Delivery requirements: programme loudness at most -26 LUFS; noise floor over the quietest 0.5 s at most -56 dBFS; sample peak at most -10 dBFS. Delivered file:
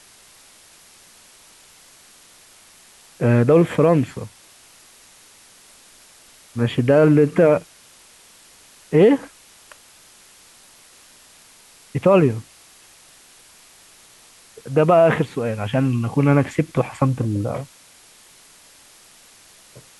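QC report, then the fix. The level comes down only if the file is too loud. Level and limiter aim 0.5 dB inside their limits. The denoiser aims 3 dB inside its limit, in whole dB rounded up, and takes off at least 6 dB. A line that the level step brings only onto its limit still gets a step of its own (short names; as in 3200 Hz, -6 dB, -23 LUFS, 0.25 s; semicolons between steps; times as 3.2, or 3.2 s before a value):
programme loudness -18.0 LUFS: fail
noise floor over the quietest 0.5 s -49 dBFS: fail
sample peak -5.0 dBFS: fail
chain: gain -8.5 dB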